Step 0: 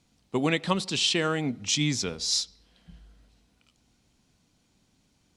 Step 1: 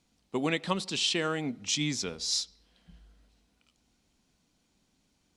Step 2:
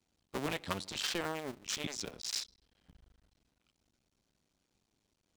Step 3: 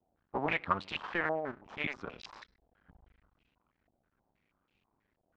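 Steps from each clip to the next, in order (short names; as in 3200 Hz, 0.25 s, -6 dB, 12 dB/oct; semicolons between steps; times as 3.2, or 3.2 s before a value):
bell 110 Hz -6.5 dB 0.82 oct; gain -3.5 dB
cycle switcher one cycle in 2, muted; gain -4.5 dB
stepped low-pass 6.2 Hz 700–2700 Hz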